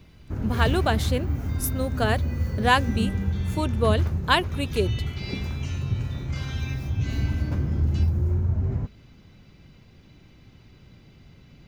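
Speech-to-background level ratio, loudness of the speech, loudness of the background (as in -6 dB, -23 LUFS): 1.0 dB, -26.5 LUFS, -27.5 LUFS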